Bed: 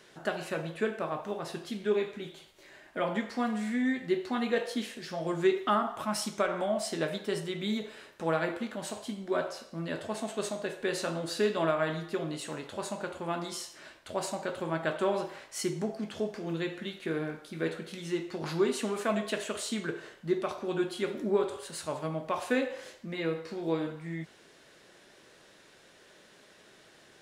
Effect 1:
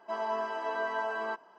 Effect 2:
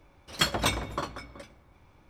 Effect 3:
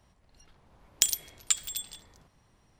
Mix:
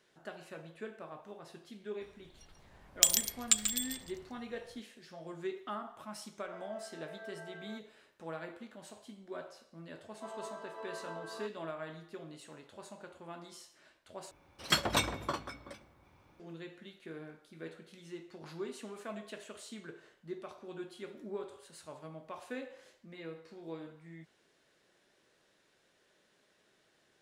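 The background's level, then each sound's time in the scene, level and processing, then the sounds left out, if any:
bed -13.5 dB
2.01 add 3 -0.5 dB + echo 0.139 s -8 dB
6.43 add 1 -14 dB + fixed phaser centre 1000 Hz, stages 6
10.12 add 1 -15 dB + small resonant body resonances 470/1200/4000 Hz, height 9 dB, ringing for 20 ms
14.31 replace with 2 -3 dB + HPF 100 Hz 6 dB/oct

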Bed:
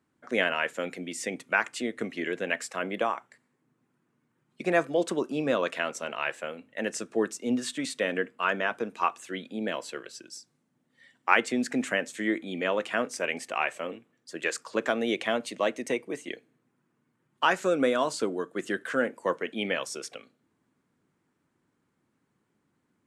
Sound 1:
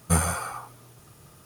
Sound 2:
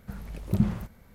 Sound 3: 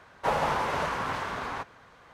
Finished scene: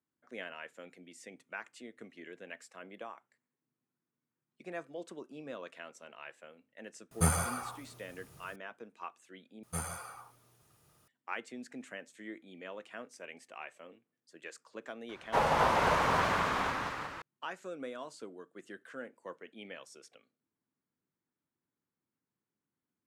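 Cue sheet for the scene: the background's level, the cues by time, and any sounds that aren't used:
bed -17.5 dB
7.11 add 1 -5.5 dB
9.63 replace with 1 -13.5 dB + low shelf 380 Hz -4.5 dB
15.09 add 3 -1.5 dB + echoes that change speed 0.268 s, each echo +1 st, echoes 3
not used: 2

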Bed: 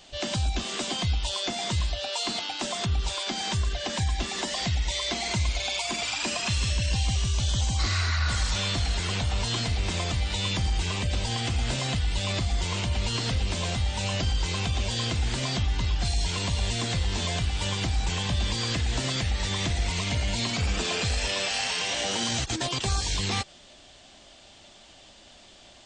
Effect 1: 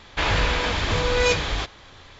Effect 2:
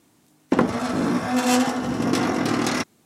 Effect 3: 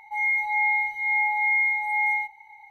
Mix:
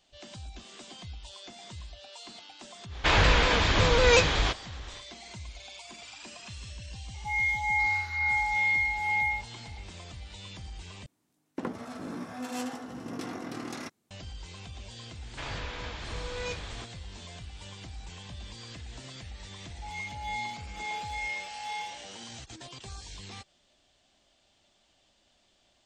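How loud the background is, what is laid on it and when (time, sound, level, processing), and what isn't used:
bed -16.5 dB
2.87 add 1, fades 0.10 s + shaped vibrato saw down 5.4 Hz, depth 100 cents
7.14 add 3 -4 dB
11.06 replace with 2 -16 dB
15.2 add 1 -16 dB
19.71 add 3 -8 dB + Wiener smoothing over 25 samples

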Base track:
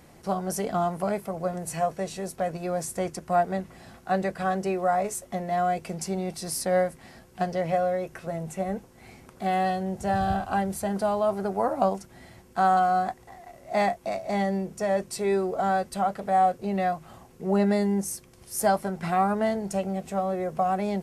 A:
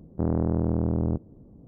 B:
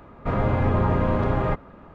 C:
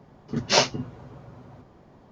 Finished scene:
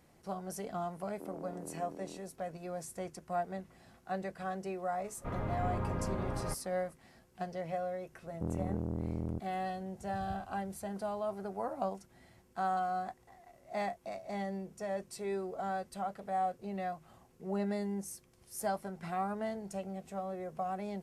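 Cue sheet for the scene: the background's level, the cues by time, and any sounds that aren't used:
base track -12 dB
1.01 add A -16 dB + HPF 270 Hz 24 dB/oct
4.99 add B -14.5 dB
8.22 add A -11.5 dB
not used: C

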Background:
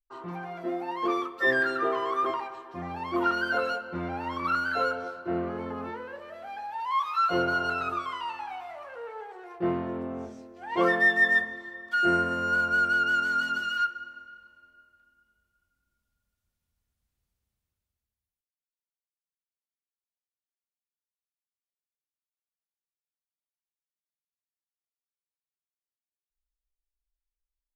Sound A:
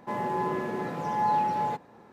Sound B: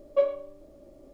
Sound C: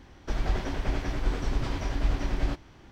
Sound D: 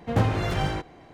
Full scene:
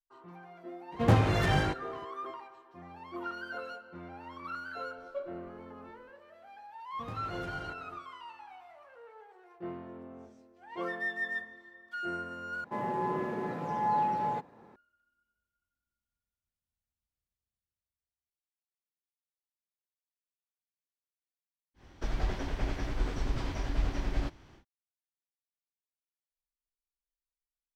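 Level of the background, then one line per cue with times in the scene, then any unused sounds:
background -13 dB
0.92 add D -1 dB + HPF 44 Hz
4.98 add B -15.5 dB
6.92 add D -8 dB, fades 0.10 s + compressor 2.5:1, threshold -37 dBFS
12.64 replace with A -3 dB + high shelf 3400 Hz -7.5 dB
21.74 add C -4 dB, fades 0.10 s

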